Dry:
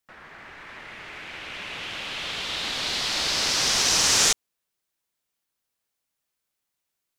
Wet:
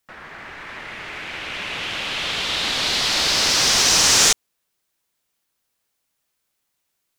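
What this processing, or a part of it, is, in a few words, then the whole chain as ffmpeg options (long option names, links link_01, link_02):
parallel distortion: -filter_complex "[0:a]asplit=2[link_01][link_02];[link_02]asoftclip=type=hard:threshold=-24dB,volume=-5dB[link_03];[link_01][link_03]amix=inputs=2:normalize=0,volume=3dB"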